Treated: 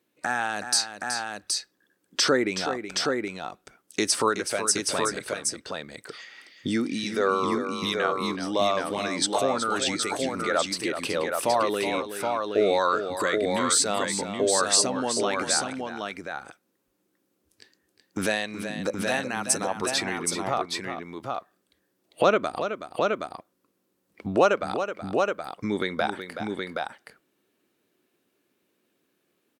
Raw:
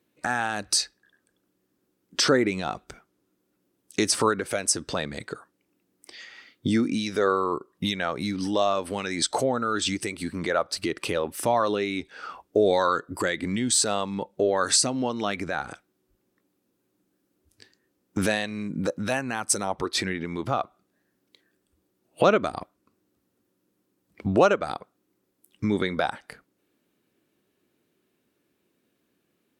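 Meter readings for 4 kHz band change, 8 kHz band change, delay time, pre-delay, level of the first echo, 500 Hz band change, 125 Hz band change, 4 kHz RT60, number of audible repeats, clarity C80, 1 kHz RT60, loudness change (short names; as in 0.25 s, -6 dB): +1.5 dB, +1.5 dB, 0.374 s, none, -9.5 dB, +0.5 dB, -4.5 dB, none, 2, none, none, -0.5 dB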